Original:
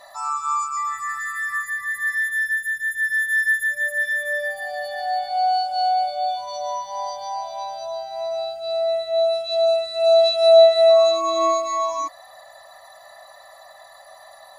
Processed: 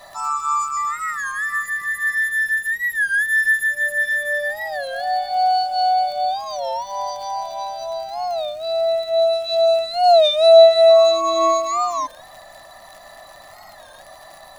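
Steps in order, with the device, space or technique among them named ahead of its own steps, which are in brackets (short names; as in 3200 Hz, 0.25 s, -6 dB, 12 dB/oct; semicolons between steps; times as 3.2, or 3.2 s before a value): warped LP (record warp 33 1/3 rpm, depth 160 cents; crackle 77/s -35 dBFS; pink noise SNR 37 dB); gain +2.5 dB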